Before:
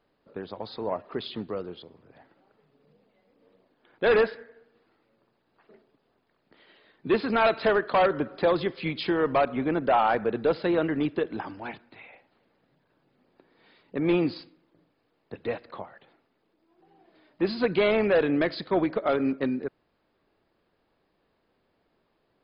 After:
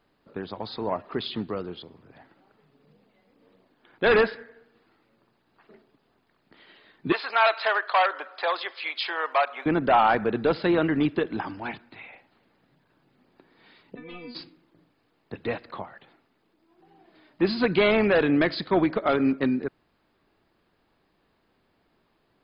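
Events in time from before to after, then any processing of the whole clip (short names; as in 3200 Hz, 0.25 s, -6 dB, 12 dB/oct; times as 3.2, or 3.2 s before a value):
7.12–9.66 HPF 630 Hz 24 dB/oct
13.95–14.35 metallic resonator 240 Hz, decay 0.29 s, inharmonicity 0.002
whole clip: bell 520 Hz -5 dB 0.81 oct; gain +4.5 dB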